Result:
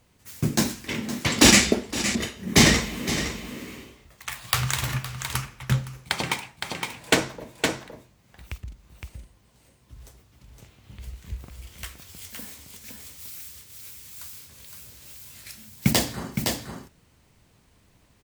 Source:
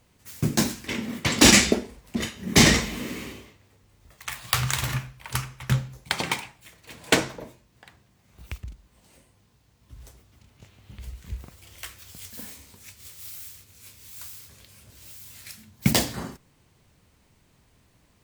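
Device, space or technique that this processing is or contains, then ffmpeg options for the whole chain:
ducked delay: -filter_complex "[0:a]asplit=3[s0][s1][s2];[s1]adelay=514,volume=0.631[s3];[s2]apad=whole_len=826720[s4];[s3][s4]sidechaincompress=threshold=0.0158:ratio=12:attack=16:release=313[s5];[s0][s5]amix=inputs=2:normalize=0"

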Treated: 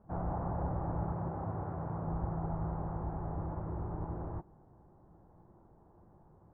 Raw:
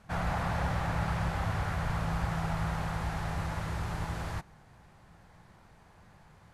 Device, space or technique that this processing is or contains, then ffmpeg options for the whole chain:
under water: -filter_complex "[0:a]asettb=1/sr,asplit=3[s0][s1][s2];[s0]atrim=end=1.124[s3];[s1]atrim=start=1.12:end=2.07,asetpts=PTS-STARTPTS,afade=t=in:d=0.004:c=qsin,afade=t=out:st=0.946:d=0.004:c=qsin,highpass=95[s4];[s2]atrim=start=2.066[s5];[s3][s4]acrossfade=d=0.004:c1=hsin:c2=qsin[s6];[s6][s5]acrossfade=d=0.004:c1=qsin:c2=hsin,lowpass=f=1000:w=0.5412,lowpass=f=1000:w=1.3066,equalizer=f=340:t=o:w=0.58:g=10,volume=0.631"

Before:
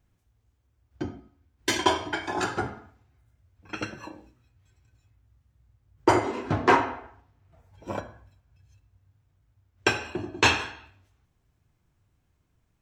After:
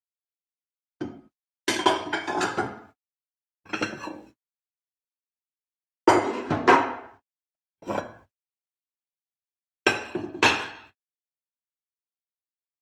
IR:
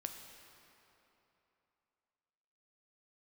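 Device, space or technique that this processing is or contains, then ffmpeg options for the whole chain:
video call: -af "highpass=160,dynaudnorm=f=450:g=5:m=2.24,agate=range=0.00158:threshold=0.00316:ratio=16:detection=peak,volume=0.891" -ar 48000 -c:a libopus -b:a 32k

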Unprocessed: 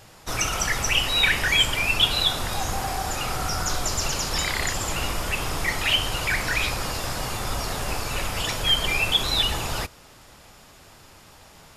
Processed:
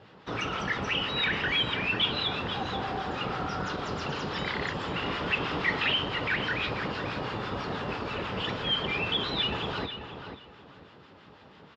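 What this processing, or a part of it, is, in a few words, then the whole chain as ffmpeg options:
guitar amplifier with harmonic tremolo: -filter_complex "[0:a]acrossover=split=960[s0][s1];[s0]aeval=exprs='val(0)*(1-0.5/2+0.5/2*cos(2*PI*6.1*n/s))':c=same[s2];[s1]aeval=exprs='val(0)*(1-0.5/2-0.5/2*cos(2*PI*6.1*n/s))':c=same[s3];[s2][s3]amix=inputs=2:normalize=0,asoftclip=type=tanh:threshold=0.133,highpass=110,equalizer=f=190:t=q:w=4:g=5,equalizer=f=280:t=q:w=4:g=4,equalizer=f=430:t=q:w=4:g=5,equalizer=f=690:t=q:w=4:g=-4,equalizer=f=2300:t=q:w=4:g=-5,lowpass=f=3500:w=0.5412,lowpass=f=3500:w=1.3066,asettb=1/sr,asplit=3[s4][s5][s6];[s4]atrim=end=5.064[s7];[s5]atrim=start=5.06:end=5.92,asetpts=PTS-STARTPTS,afade=t=in:d=0.004:c=qsin,afade=t=out:st=0.856:d=0.004:c=qsin,equalizer=f=3100:t=o:w=2.8:g=4.5[s8];[s6]atrim=start=5.916[s9];[s7][s8]acrossfade=d=0.004:c1=hsin:c2=qsin[s10];[s10][s9]acrossfade=d=0.004:c1=qsin:c2=hsin,asplit=2[s11][s12];[s12]adelay=488,lowpass=f=3900:p=1,volume=0.376,asplit=2[s13][s14];[s14]adelay=488,lowpass=f=3900:p=1,volume=0.24,asplit=2[s15][s16];[s16]adelay=488,lowpass=f=3900:p=1,volume=0.24[s17];[s11][s13][s15][s17]amix=inputs=4:normalize=0"

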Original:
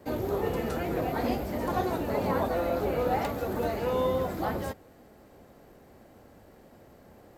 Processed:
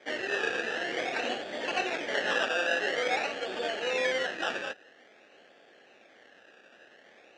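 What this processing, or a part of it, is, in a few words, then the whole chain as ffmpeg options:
circuit-bent sampling toy: -af "acrusher=samples=16:mix=1:aa=0.000001:lfo=1:lforange=9.6:lforate=0.49,highpass=480,equalizer=f=1000:t=q:w=4:g=-9,equalizer=f=1700:t=q:w=4:g=10,equalizer=f=2700:t=q:w=4:g=7,equalizer=f=4800:t=q:w=4:g=-4,lowpass=f=5900:w=0.5412,lowpass=f=5900:w=1.3066"

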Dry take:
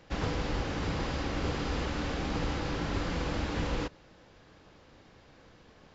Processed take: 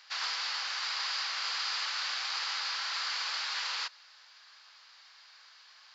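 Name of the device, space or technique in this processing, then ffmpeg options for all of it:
headphones lying on a table: -af "highpass=f=1100:w=0.5412,highpass=f=1100:w=1.3066,equalizer=f=4600:t=o:w=0.52:g=12,volume=1.5"

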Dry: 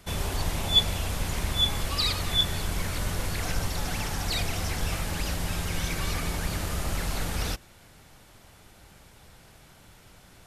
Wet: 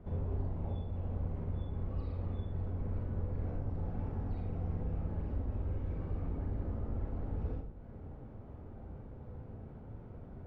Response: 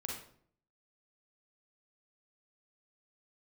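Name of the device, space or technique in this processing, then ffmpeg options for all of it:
television next door: -filter_complex "[0:a]acompressor=threshold=0.00631:ratio=3,lowpass=550[s0];[1:a]atrim=start_sample=2205[s1];[s0][s1]afir=irnorm=-1:irlink=0,volume=2.11"

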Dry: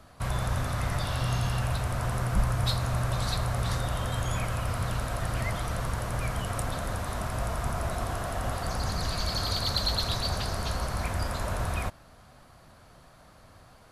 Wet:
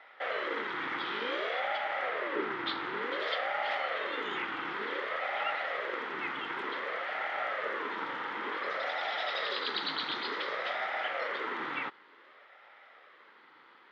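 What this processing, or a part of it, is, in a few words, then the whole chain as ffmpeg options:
voice changer toy: -filter_complex "[0:a]aeval=exprs='val(0)*sin(2*PI*460*n/s+460*0.55/0.55*sin(2*PI*0.55*n/s))':c=same,highpass=560,equalizer=f=680:t=q:w=4:g=-6,equalizer=f=1300:t=q:w=4:g=6,equalizer=f=2000:t=q:w=4:g=9,equalizer=f=3300:t=q:w=4:g=7,lowpass=f=3500:w=0.5412,lowpass=f=3500:w=1.3066,asettb=1/sr,asplit=3[s0][s1][s2];[s0]atrim=end=2.094[s3];[s1]atrim=start=2.09:end=3.02,asetpts=PTS-STARTPTS,afade=t=in:d=0.004:c=qsin,afade=t=out:st=0.926:d=0.004:c=qsin,lowpass=5700[s4];[s2]atrim=start=3.016[s5];[s3][s4]acrossfade=d=0.004:c1=hsin:c2=qsin[s6];[s6][s5]acrossfade=d=0.004:c1=qsin:c2=hsin"

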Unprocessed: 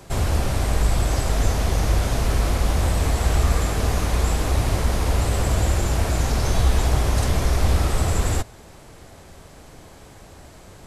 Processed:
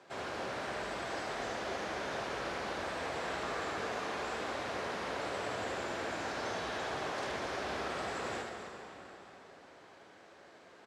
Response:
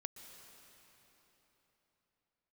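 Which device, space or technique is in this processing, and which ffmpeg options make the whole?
station announcement: -filter_complex "[0:a]highpass=350,lowpass=4200,equalizer=f=1600:t=o:w=0.39:g=4.5,aecho=1:1:75.8|259.5:0.562|0.282[s0];[1:a]atrim=start_sample=2205[s1];[s0][s1]afir=irnorm=-1:irlink=0,volume=0.473"

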